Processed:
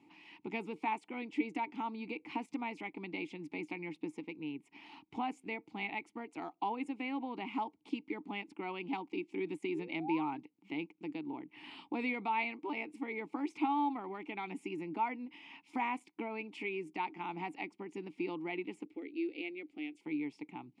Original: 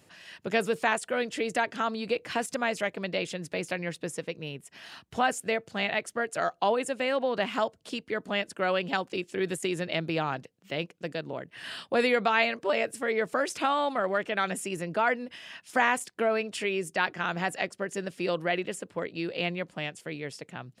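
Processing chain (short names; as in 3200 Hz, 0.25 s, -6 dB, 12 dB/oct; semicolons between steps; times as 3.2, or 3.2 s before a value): in parallel at +2 dB: compressor, threshold -39 dBFS, peak gain reduction 18.5 dB; 9.74–10.38 on the sum: painted sound rise 360–1700 Hz -33 dBFS; vowel filter u; 18.85–20.01 fixed phaser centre 400 Hz, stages 4; gain +2.5 dB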